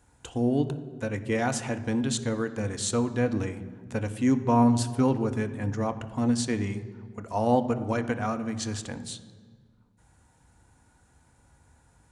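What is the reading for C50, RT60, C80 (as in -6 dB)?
13.0 dB, 1.7 s, 14.5 dB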